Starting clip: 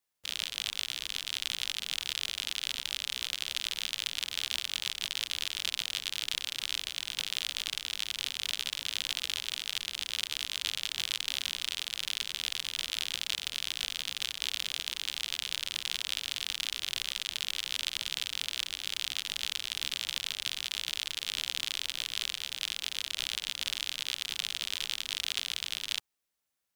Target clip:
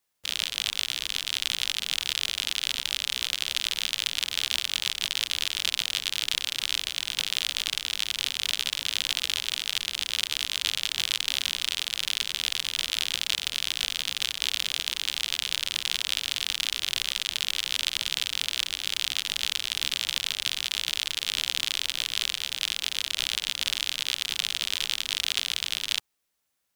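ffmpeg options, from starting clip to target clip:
-af "volume=6dB"

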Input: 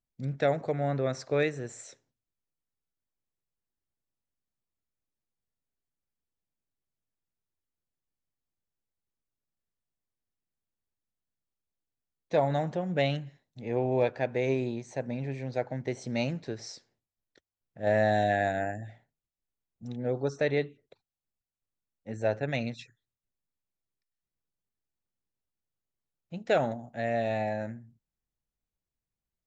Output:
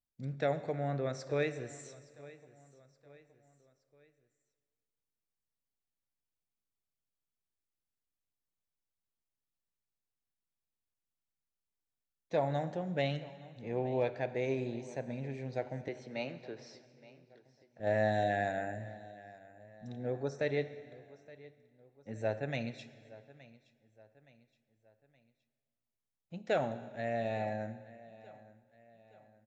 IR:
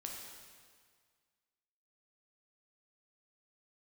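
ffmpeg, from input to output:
-filter_complex "[0:a]asettb=1/sr,asplit=3[a][b][c];[a]atrim=end=15.884[d];[b]atrim=start=15.88:end=17.8,asetpts=PTS-STARTPTS,afade=t=in:d=0.004:c=qsin,afade=t=out:st=1.916:d=0.004:c=qsin,acrossover=split=290 4600:gain=0.224 1 0.112[e][f][g];[e][f][g]amix=inputs=3:normalize=0[h];[c]atrim=start=17.796[i];[d][h]acrossfade=d=0.004:c1=hsin:c2=qsin[j];[j][i]acrossfade=d=0.004:c1=qsin:c2=hsin,aecho=1:1:870|1740|2610:0.1|0.046|0.0212,asplit=2[k][l];[1:a]atrim=start_sample=2205[m];[l][m]afir=irnorm=-1:irlink=0,volume=-6dB[n];[k][n]amix=inputs=2:normalize=0,volume=-8dB"

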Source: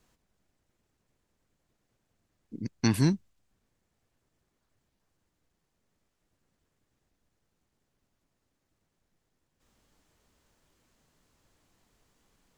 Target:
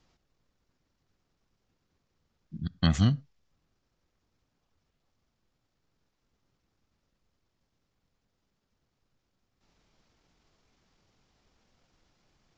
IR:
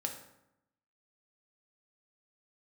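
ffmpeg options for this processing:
-filter_complex "[0:a]asetrate=32097,aresample=44100,atempo=1.37395,asplit=2[a][b];[1:a]atrim=start_sample=2205,afade=t=out:st=0.17:d=0.01,atrim=end_sample=7938[c];[b][c]afir=irnorm=-1:irlink=0,volume=-18dB[d];[a][d]amix=inputs=2:normalize=0,aresample=16000,aresample=44100"

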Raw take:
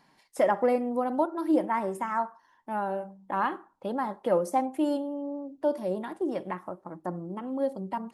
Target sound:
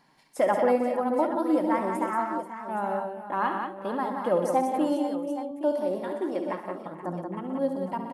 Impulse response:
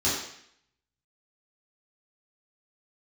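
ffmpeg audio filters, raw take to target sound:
-filter_complex "[0:a]asettb=1/sr,asplit=3[a][b][c];[a]atrim=end=5.514[d];[b]atrim=start=5.51:end=6.86,asetpts=PTS-STARTPTS,afade=t=in:d=0.004:c=qsin,afade=t=out:st=1.346:d=0.004:c=qsin,highpass=230[e];[c]atrim=start=6.856[f];[d][e]acrossfade=d=0.004:c1=hsin:c2=qsin[g];[g][f]acrossfade=d=0.004:c1=qsin:c2=hsin,asplit=2[h][i];[i]aecho=0:1:69|125|179|442|483|820:0.335|0.282|0.531|0.126|0.237|0.251[j];[h][j]amix=inputs=2:normalize=0"

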